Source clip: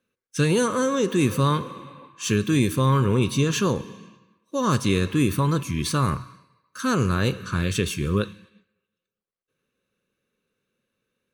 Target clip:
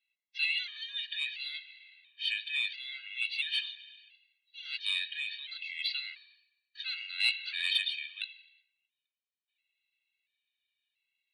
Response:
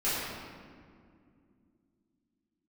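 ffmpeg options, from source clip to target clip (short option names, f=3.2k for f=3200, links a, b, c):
-filter_complex "[0:a]asettb=1/sr,asplit=3[a][b][c];[a]atrim=end=7.204[d];[b]atrim=start=7.2:end=7.79,asetpts=PTS-STARTPTS,afade=t=in:d=0.004:c=qsin,afade=t=out:st=0.586:d=0.004:c=qsin,acontrast=40[e];[c]atrim=start=7.786[f];[d][e]acrossfade=d=0.004:c1=hsin:c2=qsin[g];[g][f]acrossfade=d=0.004:c1=qsin:c2=hsin,asuperpass=centerf=2900:order=12:qfactor=1.2,asoftclip=type=tanh:threshold=-19dB,afftfilt=real='re*gt(sin(2*PI*0.73*pts/sr)*(1-2*mod(floor(b*sr/1024/320),2)),0)':imag='im*gt(sin(2*PI*0.73*pts/sr)*(1-2*mod(floor(b*sr/1024/320),2)),0)':win_size=1024:overlap=0.75,volume=5dB"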